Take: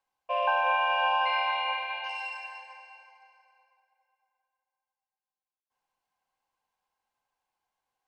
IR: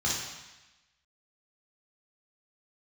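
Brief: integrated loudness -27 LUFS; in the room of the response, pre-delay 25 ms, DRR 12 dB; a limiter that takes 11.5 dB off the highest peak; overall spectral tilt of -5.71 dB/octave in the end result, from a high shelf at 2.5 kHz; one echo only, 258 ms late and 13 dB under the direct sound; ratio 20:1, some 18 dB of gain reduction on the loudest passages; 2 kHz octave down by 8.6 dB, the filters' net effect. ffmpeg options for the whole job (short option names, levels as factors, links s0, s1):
-filter_complex "[0:a]equalizer=f=2000:t=o:g=-8.5,highshelf=f=2500:g=-8,acompressor=threshold=0.00708:ratio=20,alimiter=level_in=10:limit=0.0631:level=0:latency=1,volume=0.1,aecho=1:1:258:0.224,asplit=2[s0][s1];[1:a]atrim=start_sample=2205,adelay=25[s2];[s1][s2]afir=irnorm=-1:irlink=0,volume=0.0841[s3];[s0][s3]amix=inputs=2:normalize=0,volume=17.8"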